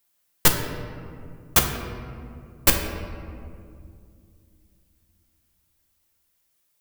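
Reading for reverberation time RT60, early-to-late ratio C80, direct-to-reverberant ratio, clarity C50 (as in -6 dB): 2.3 s, 7.0 dB, 1.5 dB, 6.0 dB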